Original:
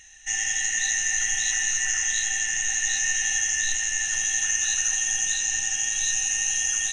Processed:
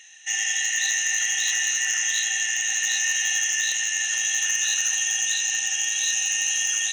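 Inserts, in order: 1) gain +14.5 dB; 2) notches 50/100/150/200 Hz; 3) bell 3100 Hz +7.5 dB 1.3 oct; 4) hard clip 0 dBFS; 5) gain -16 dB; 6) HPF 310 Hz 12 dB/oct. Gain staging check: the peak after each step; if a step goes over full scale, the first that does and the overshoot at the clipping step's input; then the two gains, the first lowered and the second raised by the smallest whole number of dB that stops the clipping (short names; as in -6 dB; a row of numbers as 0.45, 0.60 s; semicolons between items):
+3.5, +3.5, +6.0, 0.0, -16.0, -14.5 dBFS; step 1, 6.0 dB; step 1 +8.5 dB, step 5 -10 dB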